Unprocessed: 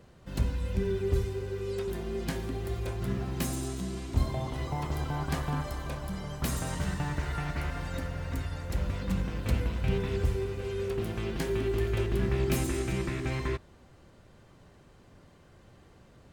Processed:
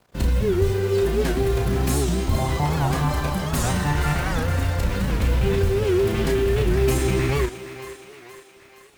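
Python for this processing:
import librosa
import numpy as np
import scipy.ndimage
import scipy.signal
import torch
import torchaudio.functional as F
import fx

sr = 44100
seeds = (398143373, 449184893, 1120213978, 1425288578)

p1 = fx.over_compress(x, sr, threshold_db=-33.0, ratio=-0.5)
p2 = x + (p1 * librosa.db_to_amplitude(-2.0))
p3 = np.sign(p2) * np.maximum(np.abs(p2) - 10.0 ** (-44.5 / 20.0), 0.0)
p4 = fx.quant_companded(p3, sr, bits=6)
p5 = fx.stretch_vocoder(p4, sr, factor=0.55)
p6 = fx.doubler(p5, sr, ms=33.0, db=-5.5)
p7 = fx.echo_thinned(p6, sr, ms=469, feedback_pct=56, hz=340.0, wet_db=-11.5)
p8 = fx.record_warp(p7, sr, rpm=78.0, depth_cents=160.0)
y = p8 * librosa.db_to_amplitude(7.0)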